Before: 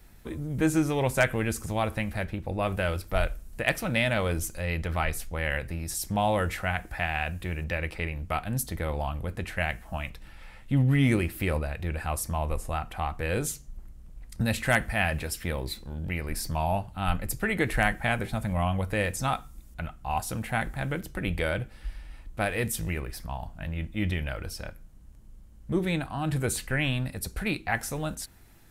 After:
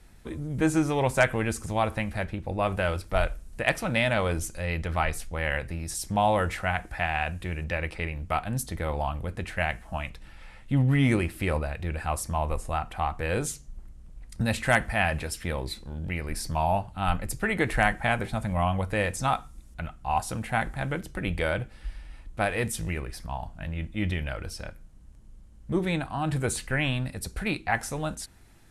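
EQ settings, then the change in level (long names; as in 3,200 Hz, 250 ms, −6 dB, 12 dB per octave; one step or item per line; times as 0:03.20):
low-pass filter 11,000 Hz 24 dB per octave
dynamic equaliser 910 Hz, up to +4 dB, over −38 dBFS, Q 1.2
0.0 dB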